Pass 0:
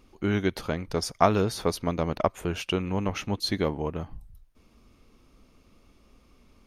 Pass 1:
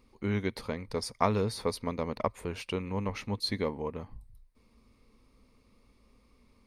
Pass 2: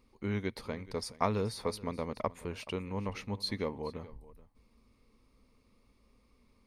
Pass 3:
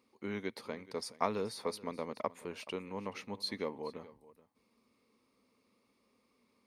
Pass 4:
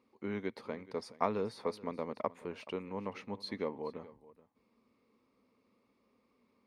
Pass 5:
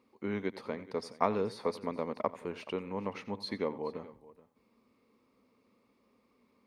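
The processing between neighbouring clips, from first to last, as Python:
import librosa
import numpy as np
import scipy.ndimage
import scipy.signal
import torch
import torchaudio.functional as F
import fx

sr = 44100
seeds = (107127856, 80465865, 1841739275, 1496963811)

y1 = fx.ripple_eq(x, sr, per_octave=0.94, db=7)
y1 = y1 * 10.0 ** (-6.0 / 20.0)
y2 = y1 + 10.0 ** (-19.0 / 20.0) * np.pad(y1, (int(427 * sr / 1000.0), 0))[:len(y1)]
y2 = y2 * 10.0 ** (-3.5 / 20.0)
y3 = scipy.signal.sosfilt(scipy.signal.butter(2, 220.0, 'highpass', fs=sr, output='sos'), y2)
y3 = y3 * 10.0 ** (-2.0 / 20.0)
y4 = fx.lowpass(y3, sr, hz=1900.0, slope=6)
y4 = y4 * 10.0 ** (1.5 / 20.0)
y5 = y4 + 10.0 ** (-17.5 / 20.0) * np.pad(y4, (int(89 * sr / 1000.0), 0))[:len(y4)]
y5 = y5 * 10.0 ** (3.0 / 20.0)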